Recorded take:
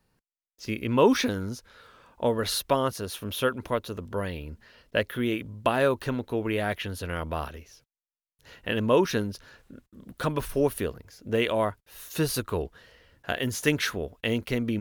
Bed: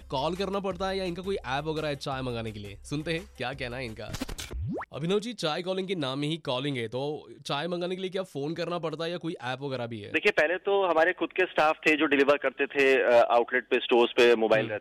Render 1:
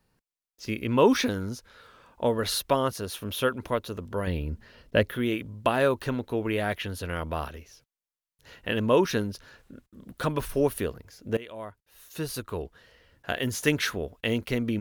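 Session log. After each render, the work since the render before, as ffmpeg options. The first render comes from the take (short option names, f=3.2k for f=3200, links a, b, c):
-filter_complex "[0:a]asettb=1/sr,asplit=3[a][b][c];[a]atrim=end=4.274[d];[b]atrim=start=4.27:end=5.15,asetpts=PTS-STARTPTS,afade=t=in:d=0.004:c=qsin,afade=t=out:st=0.876:d=0.004:c=qsin,lowshelf=f=450:g=8[e];[c]atrim=start=5.146[f];[d][e]acrossfade=d=0.004:c1=hsin:c2=qsin[g];[g][f]acrossfade=d=0.004:c1=qsin:c2=hsin,asplit=2[h][i];[h]atrim=end=11.37,asetpts=PTS-STARTPTS,afade=t=out:st=11.366:d=0.004:c=hsin:silence=0.112202[j];[i]atrim=start=11.37,asetpts=PTS-STARTPTS,afade=t=in:d=2.09:silence=0.112202[k];[j][k]concat=n=2:v=0:a=1"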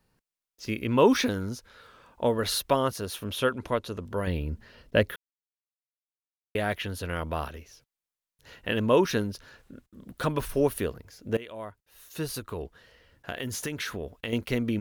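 -filter_complex "[0:a]asettb=1/sr,asplit=3[a][b][c];[a]atrim=end=3.254[d];[b]atrim=start=3.25:end=4.06,asetpts=PTS-STARTPTS,afade=t=in:d=0.004:c=qsin,afade=t=out:st=0.806:d=0.004:c=qsin,lowpass=11k[e];[c]atrim=start=4.056[f];[d][e]acrossfade=d=0.004:c1=hsin:c2=qsin[g];[g][f]acrossfade=d=0.004:c1=qsin:c2=hsin,asettb=1/sr,asplit=3[h][i][j];[h]atrim=end=12.274[k];[i]atrim=start=12.27:end=14.33,asetpts=PTS-STARTPTS,afade=t=in:d=0.004:c=qsin,afade=t=out:st=2.056:d=0.004:c=qsin,acompressor=threshold=-29dB:ratio=6:attack=3.2:release=140:knee=1:detection=peak[l];[j]atrim=start=14.326[m];[k][l]acrossfade=d=0.004:c1=hsin:c2=qsin[n];[n][m]acrossfade=d=0.004:c1=qsin:c2=hsin,asplit=3[o][p][q];[o]atrim=end=5.16,asetpts=PTS-STARTPTS,afade=t=out:st=5.156:d=0.004:c=hsin[r];[p]atrim=start=5.16:end=6.55,asetpts=PTS-STARTPTS,volume=0[s];[q]atrim=start=6.55,asetpts=PTS-STARTPTS,afade=t=in:d=0.004:c=hsin[t];[r][s][t]concat=n=3:v=0:a=1"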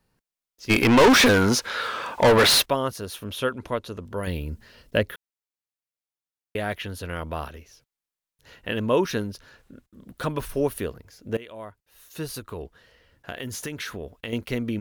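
-filter_complex "[0:a]asplit=3[a][b][c];[a]afade=t=out:st=0.69:d=0.02[d];[b]asplit=2[e][f];[f]highpass=f=720:p=1,volume=32dB,asoftclip=type=tanh:threshold=-8dB[g];[e][g]amix=inputs=2:normalize=0,lowpass=f=5.1k:p=1,volume=-6dB,afade=t=in:st=0.69:d=0.02,afade=t=out:st=2.64:d=0.02[h];[c]afade=t=in:st=2.64:d=0.02[i];[d][h][i]amix=inputs=3:normalize=0,asettb=1/sr,asplit=3[j][k][l];[j]atrim=end=4.234[m];[k]atrim=start=4.23:end=4.98,asetpts=PTS-STARTPTS,afade=t=in:d=0.004:c=qsin,afade=t=out:st=0.746:d=0.004:c=qsin,highshelf=f=4.5k:g=10[n];[l]atrim=start=4.976[o];[m][n]acrossfade=d=0.004:c1=hsin:c2=qsin[p];[p][o]acrossfade=d=0.004:c1=qsin:c2=hsin"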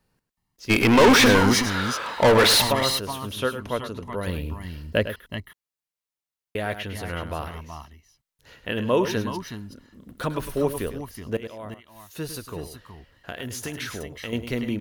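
-af "aecho=1:1:104|372|373:0.282|0.299|0.266"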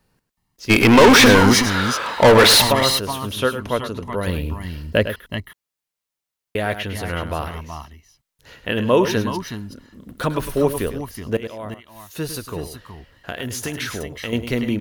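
-af "volume=5.5dB,alimiter=limit=-3dB:level=0:latency=1"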